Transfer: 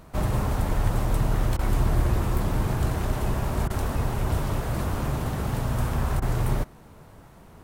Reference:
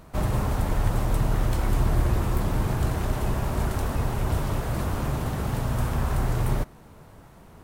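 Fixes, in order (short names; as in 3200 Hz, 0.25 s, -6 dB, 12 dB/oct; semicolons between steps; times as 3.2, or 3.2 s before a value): interpolate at 1.57/3.68/6.2, 19 ms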